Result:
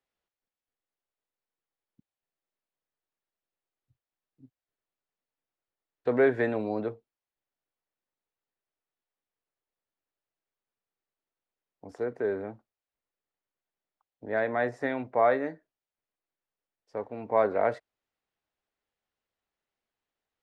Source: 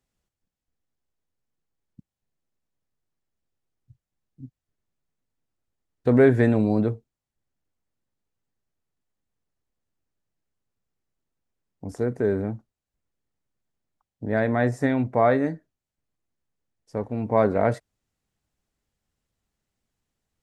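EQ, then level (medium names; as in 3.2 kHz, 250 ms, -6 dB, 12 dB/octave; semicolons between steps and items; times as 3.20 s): three-band isolator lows -16 dB, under 350 Hz, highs -17 dB, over 4.5 kHz; -2.5 dB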